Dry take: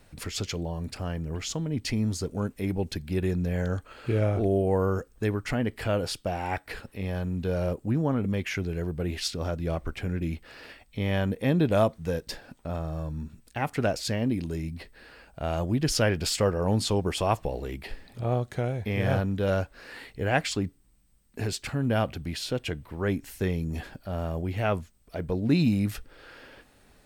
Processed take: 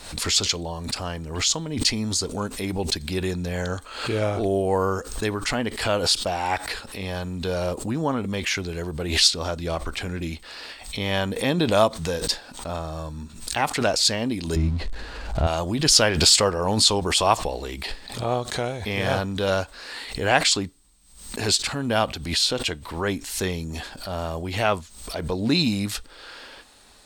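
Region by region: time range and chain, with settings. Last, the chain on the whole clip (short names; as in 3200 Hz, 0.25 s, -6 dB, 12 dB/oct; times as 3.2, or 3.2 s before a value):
14.56–15.47 zero-crossing step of -44 dBFS + RIAA curve playback
whole clip: graphic EQ 125/1000/4000/8000 Hz -6/+7/+11/+10 dB; backwards sustainer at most 80 dB/s; gain +1.5 dB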